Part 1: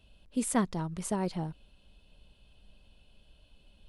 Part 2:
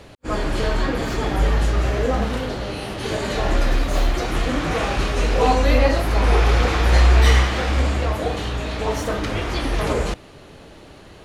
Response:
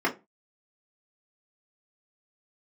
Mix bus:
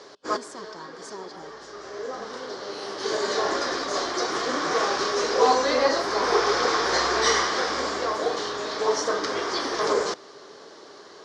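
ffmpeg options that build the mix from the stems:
-filter_complex "[0:a]alimiter=level_in=1dB:limit=-24dB:level=0:latency=1,volume=-1dB,volume=-6dB,asplit=2[link_01][link_02];[1:a]volume=-3.5dB[link_03];[link_02]apad=whole_len=495898[link_04];[link_03][link_04]sidechaincompress=threshold=-54dB:ratio=5:attack=41:release=1440[link_05];[link_01][link_05]amix=inputs=2:normalize=0,highpass=350,equalizer=frequency=410:width_type=q:width=4:gain=9,equalizer=frequency=1100:width_type=q:width=4:gain=8,equalizer=frequency=1600:width_type=q:width=4:gain=4,equalizer=frequency=2600:width_type=q:width=4:gain=-10,lowpass=frequency=7500:width=0.5412,lowpass=frequency=7500:width=1.3066,equalizer=frequency=5300:width_type=o:width=0.69:gain=12.5"

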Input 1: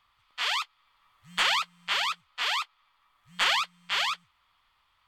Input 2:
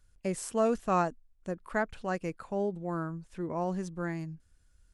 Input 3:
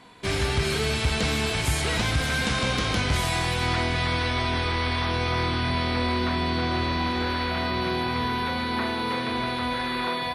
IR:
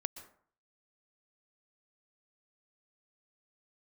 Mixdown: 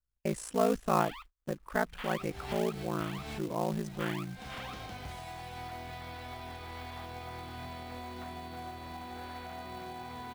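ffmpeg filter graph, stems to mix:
-filter_complex "[0:a]lowpass=2900,adelay=600,volume=-16dB[link_01];[1:a]aeval=exprs='val(0)*sin(2*PI*28*n/s)':channel_layout=same,volume=2.5dB,asplit=2[link_02][link_03];[2:a]equalizer=frequency=750:width_type=o:width=0.31:gain=12,alimiter=limit=-17dB:level=0:latency=1:release=394,adelay=1950,volume=-6dB,afade=type=out:start_time=2.92:duration=0.62:silence=0.298538[link_04];[link_03]apad=whole_len=542134[link_05];[link_04][link_05]sidechaincompress=threshold=-47dB:ratio=10:attack=6:release=171[link_06];[link_01][link_02][link_06]amix=inputs=3:normalize=0,agate=range=-23dB:threshold=-50dB:ratio=16:detection=peak,highshelf=frequency=4000:gain=-4,acrusher=bits=4:mode=log:mix=0:aa=0.000001"

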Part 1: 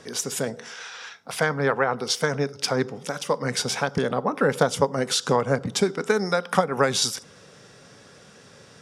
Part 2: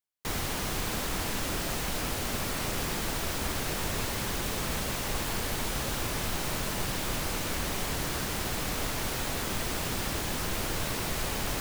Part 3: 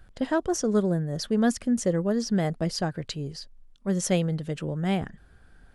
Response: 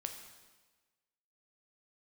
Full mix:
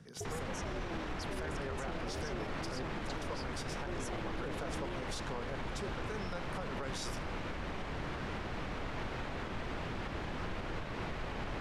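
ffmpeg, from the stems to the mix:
-filter_complex "[0:a]volume=-19dB[link_01];[1:a]lowpass=2400,alimiter=level_in=1.5dB:limit=-24dB:level=0:latency=1:release=126,volume=-1.5dB,volume=-4dB[link_02];[2:a]acompressor=threshold=-36dB:ratio=2.5,aeval=exprs='val(0)*sin(2*PI*160*n/s)':channel_layout=same,volume=-5dB[link_03];[link_01][link_02][link_03]amix=inputs=3:normalize=0,alimiter=level_in=6dB:limit=-24dB:level=0:latency=1:release=19,volume=-6dB"

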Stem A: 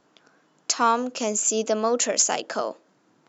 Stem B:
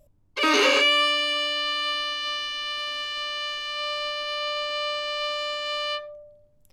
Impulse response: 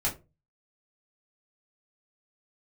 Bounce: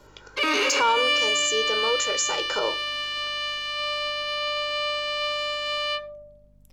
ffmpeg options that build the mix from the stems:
-filter_complex "[0:a]bandreject=frequency=650:width=12,aecho=1:1:2.1:0.83,volume=7.5dB,afade=type=out:start_time=0.88:duration=0.3:silence=0.223872,afade=type=in:start_time=2.29:duration=0.42:silence=0.421697,asplit=2[link_01][link_02];[link_02]volume=-14dB[link_03];[1:a]adynamicequalizer=threshold=0.02:dfrequency=2400:dqfactor=3.3:tfrequency=2400:tqfactor=3.3:attack=5:release=100:ratio=0.375:range=2:mode=boostabove:tftype=bell,aeval=exprs='val(0)+0.00158*(sin(2*PI*50*n/s)+sin(2*PI*2*50*n/s)/2+sin(2*PI*3*50*n/s)/3+sin(2*PI*4*50*n/s)/4+sin(2*PI*5*50*n/s)/5)':channel_layout=same,volume=-5.5dB[link_04];[2:a]atrim=start_sample=2205[link_05];[link_03][link_05]afir=irnorm=-1:irlink=0[link_06];[link_01][link_04][link_06]amix=inputs=3:normalize=0,acontrast=55,alimiter=limit=-14dB:level=0:latency=1:release=54"

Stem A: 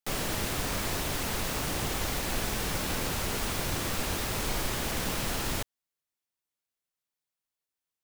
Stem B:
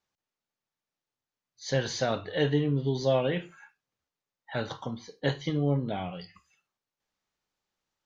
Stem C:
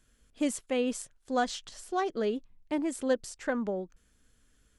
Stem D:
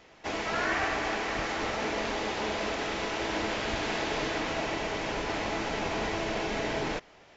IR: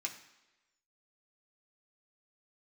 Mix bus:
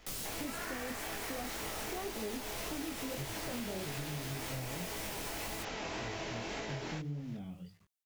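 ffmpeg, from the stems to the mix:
-filter_complex "[0:a]acrossover=split=240|3000[link_01][link_02][link_03];[link_02]acompressor=threshold=-39dB:ratio=6[link_04];[link_01][link_04][link_03]amix=inputs=3:normalize=0,volume=-5.5dB[link_05];[1:a]asubboost=boost=8.5:cutoff=240,adelay=1450,volume=-16.5dB[link_06];[2:a]tiltshelf=frequency=970:gain=7.5,volume=-0.5dB[link_07];[3:a]volume=-2dB[link_08];[link_05][link_08]amix=inputs=2:normalize=0,highshelf=frequency=4300:gain=8.5,alimiter=level_in=0.5dB:limit=-24dB:level=0:latency=1:release=201,volume=-0.5dB,volume=0dB[link_09];[link_06][link_07]amix=inputs=2:normalize=0,acrusher=bits=10:mix=0:aa=0.000001,alimiter=level_in=3dB:limit=-24dB:level=0:latency=1,volume=-3dB,volume=0dB[link_10];[link_09][link_10]amix=inputs=2:normalize=0,flanger=delay=18.5:depth=7.5:speed=1.8,acompressor=threshold=-36dB:ratio=6"

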